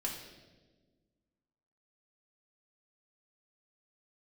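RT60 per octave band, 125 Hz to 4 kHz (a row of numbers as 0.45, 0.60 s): 1.9, 2.1, 1.7, 1.1, 1.0, 1.1 s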